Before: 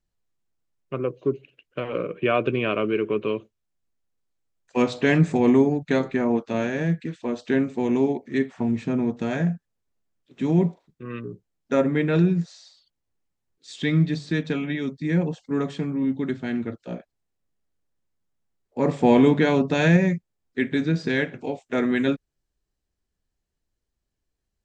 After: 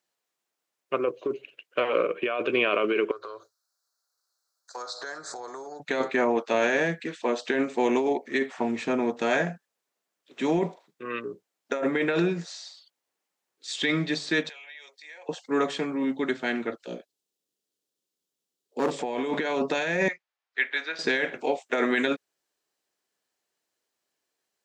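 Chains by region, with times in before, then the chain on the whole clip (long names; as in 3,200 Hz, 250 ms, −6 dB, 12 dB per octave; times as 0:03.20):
0:03.11–0:05.80: drawn EQ curve 110 Hz 0 dB, 200 Hz −28 dB, 290 Hz −13 dB, 580 Hz −3 dB, 980 Hz −1 dB, 1,400 Hz +8 dB, 2,700 Hz −29 dB, 4,200 Hz +11 dB, 8,500 Hz +4 dB + downward compressor, threshold −40 dBFS
0:14.49–0:15.29: Bessel high-pass filter 960 Hz, order 6 + parametric band 1,300 Hz −11 dB 0.45 octaves + downward compressor 3 to 1, threshold −54 dBFS
0:16.86–0:18.99: flat-topped bell 1,200 Hz −12 dB 2.3 octaves + hard clipping −21.5 dBFS
0:20.08–0:20.99: high-pass filter 1,000 Hz + high-frequency loss of the air 160 metres
whole clip: high-pass filter 490 Hz 12 dB per octave; compressor whose output falls as the input rises −29 dBFS, ratio −1; level +5 dB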